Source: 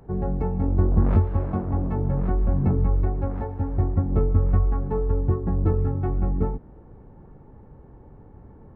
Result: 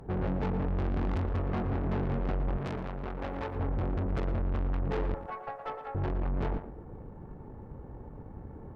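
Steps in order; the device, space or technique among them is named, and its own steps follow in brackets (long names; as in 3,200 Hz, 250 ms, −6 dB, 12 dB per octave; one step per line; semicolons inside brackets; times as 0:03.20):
0:05.14–0:05.95: Butterworth high-pass 540 Hz 48 dB per octave
rockabilly slapback (tube saturation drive 34 dB, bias 0.65; tape delay 115 ms, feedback 21%, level −6 dB, low-pass 1,600 Hz)
0:02.57–0:03.56: spectral tilt +2 dB per octave
level +5 dB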